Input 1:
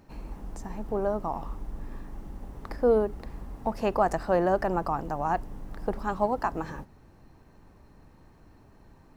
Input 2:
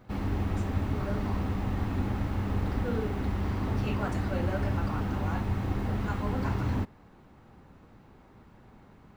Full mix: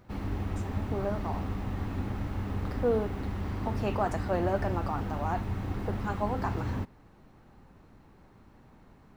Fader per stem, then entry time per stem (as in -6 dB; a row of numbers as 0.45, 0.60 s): -6.0, -3.5 dB; 0.00, 0.00 s